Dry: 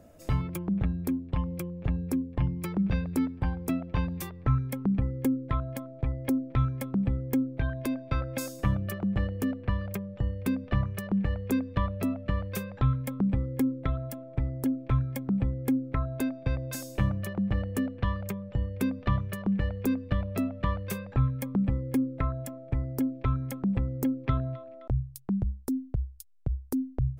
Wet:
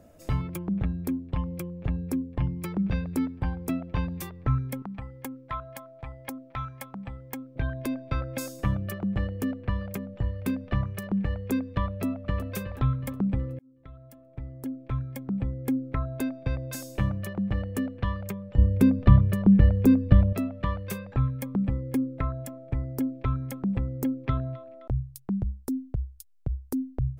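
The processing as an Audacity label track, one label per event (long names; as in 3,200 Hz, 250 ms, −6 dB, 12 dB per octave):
4.820000	7.560000	low shelf with overshoot 570 Hz −11 dB, Q 1.5
9.210000	10.190000	delay throw 540 ms, feedback 25%, level −13 dB
11.870000	12.450000	delay throw 370 ms, feedback 55%, level −11.5 dB
13.590000	15.860000	fade in
18.580000	20.330000	low-shelf EQ 470 Hz +12 dB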